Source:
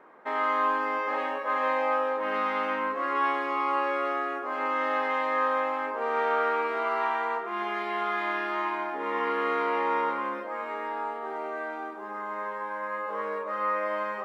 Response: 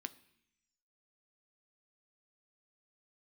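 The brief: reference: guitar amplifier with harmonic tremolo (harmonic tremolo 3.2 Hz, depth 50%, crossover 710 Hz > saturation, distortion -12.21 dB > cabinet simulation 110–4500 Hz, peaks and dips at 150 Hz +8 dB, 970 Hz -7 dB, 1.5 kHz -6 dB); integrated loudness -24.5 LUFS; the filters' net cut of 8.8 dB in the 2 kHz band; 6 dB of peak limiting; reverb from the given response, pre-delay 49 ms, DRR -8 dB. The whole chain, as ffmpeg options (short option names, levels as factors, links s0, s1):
-filter_complex "[0:a]equalizer=f=2000:t=o:g=-7,alimiter=limit=0.0708:level=0:latency=1,asplit=2[s0][s1];[1:a]atrim=start_sample=2205,adelay=49[s2];[s1][s2]afir=irnorm=-1:irlink=0,volume=3.35[s3];[s0][s3]amix=inputs=2:normalize=0,acrossover=split=710[s4][s5];[s4]aeval=exprs='val(0)*(1-0.5/2+0.5/2*cos(2*PI*3.2*n/s))':c=same[s6];[s5]aeval=exprs='val(0)*(1-0.5/2-0.5/2*cos(2*PI*3.2*n/s))':c=same[s7];[s6][s7]amix=inputs=2:normalize=0,asoftclip=threshold=0.0501,highpass=110,equalizer=f=150:t=q:w=4:g=8,equalizer=f=970:t=q:w=4:g=-7,equalizer=f=1500:t=q:w=4:g=-6,lowpass=f=4500:w=0.5412,lowpass=f=4500:w=1.3066,volume=2.82"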